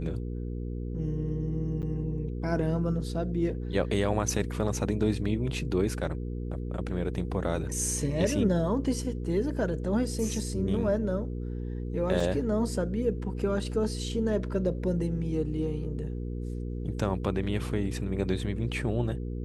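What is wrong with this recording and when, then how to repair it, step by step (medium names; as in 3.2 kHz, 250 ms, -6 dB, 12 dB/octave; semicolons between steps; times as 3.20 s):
hum 60 Hz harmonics 8 -34 dBFS
1.82–1.83 s: dropout 8.6 ms
12.20 s: dropout 4.1 ms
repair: de-hum 60 Hz, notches 8; interpolate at 1.82 s, 8.6 ms; interpolate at 12.20 s, 4.1 ms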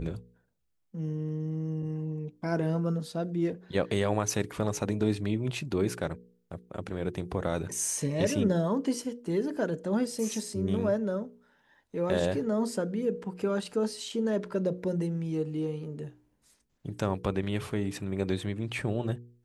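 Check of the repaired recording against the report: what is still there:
nothing left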